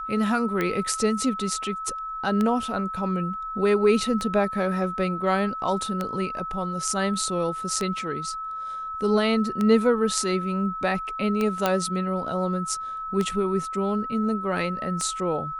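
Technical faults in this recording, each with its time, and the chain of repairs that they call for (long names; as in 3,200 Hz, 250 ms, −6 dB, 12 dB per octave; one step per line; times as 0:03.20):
scratch tick 33 1/3 rpm −13 dBFS
whistle 1,300 Hz −30 dBFS
0:11.66: click −7 dBFS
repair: click removal
notch filter 1,300 Hz, Q 30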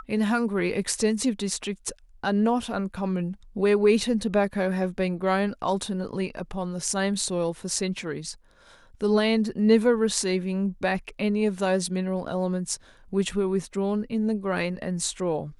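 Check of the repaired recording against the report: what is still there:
none of them is left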